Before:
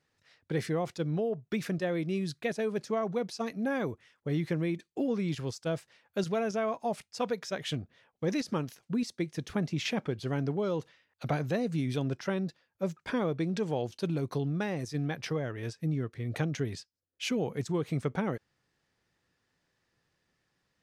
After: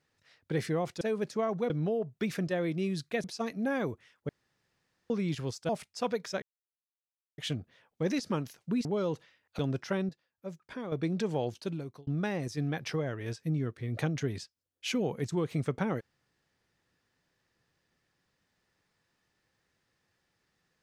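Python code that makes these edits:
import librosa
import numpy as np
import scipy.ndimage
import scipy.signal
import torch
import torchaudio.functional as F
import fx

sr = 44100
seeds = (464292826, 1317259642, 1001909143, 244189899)

y = fx.edit(x, sr, fx.move(start_s=2.55, length_s=0.69, to_s=1.01),
    fx.room_tone_fill(start_s=4.29, length_s=0.81),
    fx.cut(start_s=5.69, length_s=1.18),
    fx.insert_silence(at_s=7.6, length_s=0.96),
    fx.cut(start_s=9.07, length_s=1.44),
    fx.cut(start_s=11.25, length_s=0.71),
    fx.clip_gain(start_s=12.46, length_s=0.83, db=-9.0),
    fx.fade_out_span(start_s=13.86, length_s=0.58), tone=tone)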